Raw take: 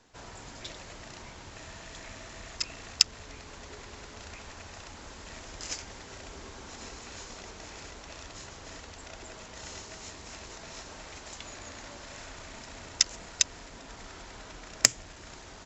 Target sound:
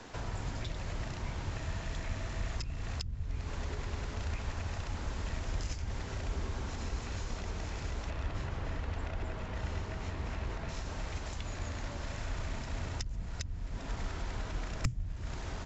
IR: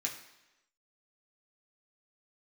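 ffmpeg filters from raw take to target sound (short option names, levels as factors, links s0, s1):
-filter_complex "[0:a]asettb=1/sr,asplit=3[s0][s1][s2];[s0]atrim=end=8.104[s3];[s1]atrim=start=8.1:end=10.69,asetpts=PTS-STARTPTS,afade=t=in:d=0.004:c=qsin,afade=t=out:st=2.586:d=0.004:c=qsin,bass=f=250:g=1,treble=f=4000:g=-12[s4];[s2]atrim=start=10.686[s5];[s3][s4]acrossfade=d=0.004:c1=hsin:c2=qsin[s6];[s6][s5]acrossfade=d=0.004:c1=qsin:c2=hsin,acrossover=split=150[s7][s8];[s8]acompressor=threshold=0.00141:ratio=5[s9];[s7][s9]amix=inputs=2:normalize=0,highshelf=f=4800:g=-9.5,volume=5.31"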